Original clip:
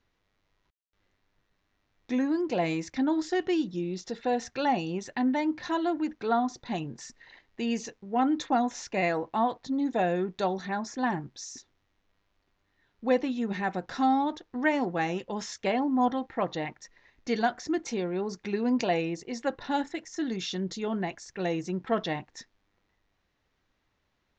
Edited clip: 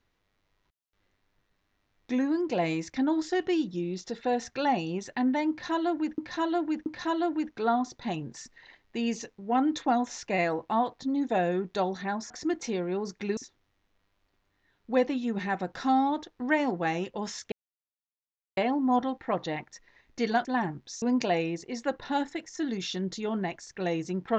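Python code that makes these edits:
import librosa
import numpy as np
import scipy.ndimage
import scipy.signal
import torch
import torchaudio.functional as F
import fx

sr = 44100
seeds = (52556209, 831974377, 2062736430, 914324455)

y = fx.edit(x, sr, fx.repeat(start_s=5.5, length_s=0.68, count=3),
    fx.swap(start_s=10.94, length_s=0.57, other_s=17.54, other_length_s=1.07),
    fx.insert_silence(at_s=15.66, length_s=1.05), tone=tone)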